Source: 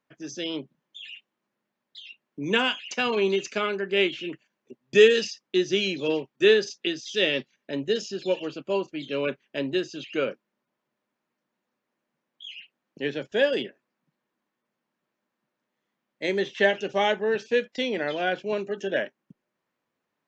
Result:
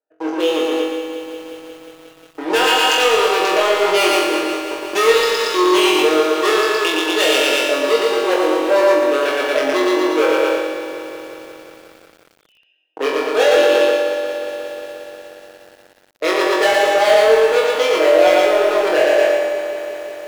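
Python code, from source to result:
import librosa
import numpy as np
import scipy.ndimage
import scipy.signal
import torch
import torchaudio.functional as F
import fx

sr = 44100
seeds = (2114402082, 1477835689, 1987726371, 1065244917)

p1 = fx.wiener(x, sr, points=41)
p2 = fx.leveller(p1, sr, passes=3)
p3 = 10.0 ** (-18.5 / 20.0) * np.tanh(p2 / 10.0 ** (-18.5 / 20.0))
p4 = fx.peak_eq(p3, sr, hz=710.0, db=5.0, octaves=2.1)
p5 = p4 + 0.63 * np.pad(p4, (int(6.4 * sr / 1000.0), 0))[:len(p4)]
p6 = fx.echo_feedback(p5, sr, ms=116, feedback_pct=47, wet_db=-3)
p7 = fx.over_compress(p6, sr, threshold_db=-26.0, ratio=-1.0)
p8 = p6 + (p7 * librosa.db_to_amplitude(0.5))
p9 = scipy.signal.sosfilt(scipy.signal.butter(4, 420.0, 'highpass', fs=sr, output='sos'), p8)
p10 = fx.leveller(p9, sr, passes=1)
p11 = p10 + fx.room_flutter(p10, sr, wall_m=3.8, rt60_s=0.46, dry=0)
p12 = fx.echo_crushed(p11, sr, ms=179, feedback_pct=80, bits=6, wet_db=-11.5)
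y = p12 * librosa.db_to_amplitude(-3.5)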